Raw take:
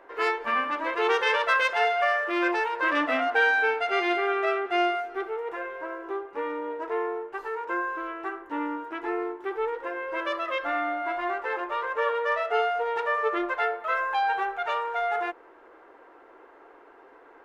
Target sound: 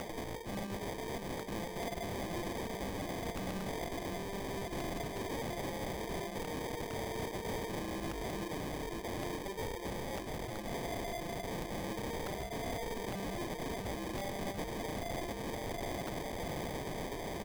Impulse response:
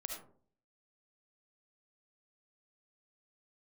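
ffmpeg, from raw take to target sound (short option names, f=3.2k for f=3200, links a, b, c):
-filter_complex "[0:a]acrossover=split=480[a][b];[b]acompressor=mode=upward:threshold=-28dB:ratio=2.5[c];[a][c]amix=inputs=2:normalize=0,aecho=1:1:690|1380|2070|2760|3450|4140:0.376|0.199|0.106|0.056|0.0297|0.0157,areverse,acompressor=threshold=-41dB:ratio=6,areverse,lowshelf=f=150:g=3.5,acrusher=samples=32:mix=1:aa=0.000001,alimiter=level_in=18dB:limit=-24dB:level=0:latency=1:release=426,volume=-18dB,aeval=exprs='(mod(158*val(0)+1,2)-1)/158':c=same,volume=11dB"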